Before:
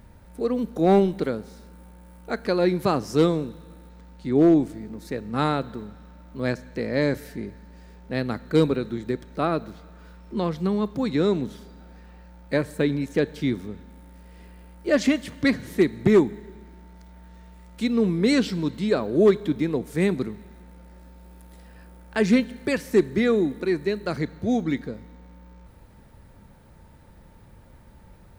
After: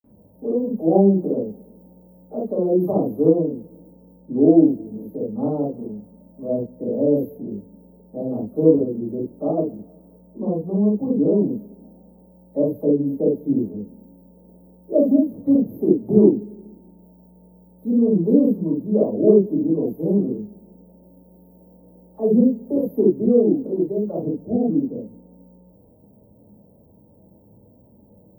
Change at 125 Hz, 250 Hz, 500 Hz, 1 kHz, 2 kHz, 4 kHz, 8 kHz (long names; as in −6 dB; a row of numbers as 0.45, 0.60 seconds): +1.5 dB, +5.0 dB, +3.5 dB, −5.0 dB, below −40 dB, below −40 dB, below −25 dB